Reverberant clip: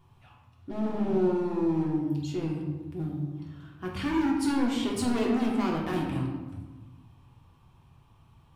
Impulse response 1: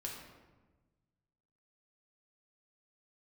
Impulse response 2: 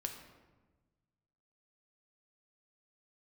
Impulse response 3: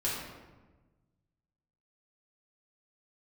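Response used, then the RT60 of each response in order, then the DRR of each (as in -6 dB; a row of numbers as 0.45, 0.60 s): 1; 1.2, 1.3, 1.2 s; -2.0, 3.5, -7.5 dB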